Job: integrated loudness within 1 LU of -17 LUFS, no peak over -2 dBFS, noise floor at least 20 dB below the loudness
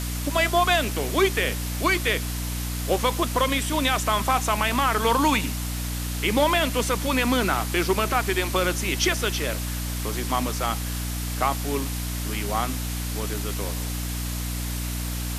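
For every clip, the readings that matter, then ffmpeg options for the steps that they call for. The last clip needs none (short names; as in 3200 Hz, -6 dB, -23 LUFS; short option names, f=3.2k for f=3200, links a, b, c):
hum 60 Hz; harmonics up to 300 Hz; hum level -27 dBFS; noise floor -29 dBFS; noise floor target -45 dBFS; loudness -24.5 LUFS; peak -9.0 dBFS; loudness target -17.0 LUFS
-> -af "bandreject=f=60:t=h:w=6,bandreject=f=120:t=h:w=6,bandreject=f=180:t=h:w=6,bandreject=f=240:t=h:w=6,bandreject=f=300:t=h:w=6"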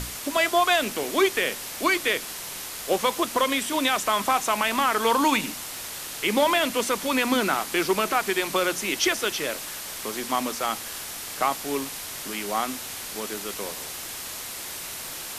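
hum none; noise floor -36 dBFS; noise floor target -45 dBFS
-> -af "afftdn=nr=9:nf=-36"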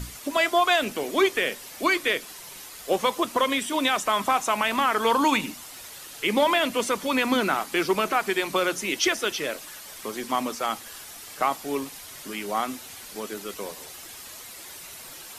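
noise floor -43 dBFS; noise floor target -45 dBFS
-> -af "afftdn=nr=6:nf=-43"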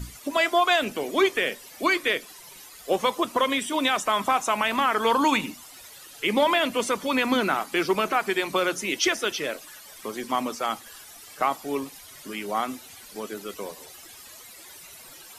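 noise floor -46 dBFS; loudness -25.0 LUFS; peak -10.5 dBFS; loudness target -17.0 LUFS
-> -af "volume=8dB"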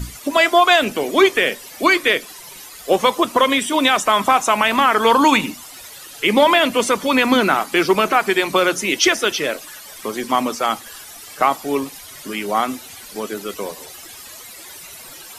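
loudness -17.0 LUFS; peak -2.5 dBFS; noise floor -38 dBFS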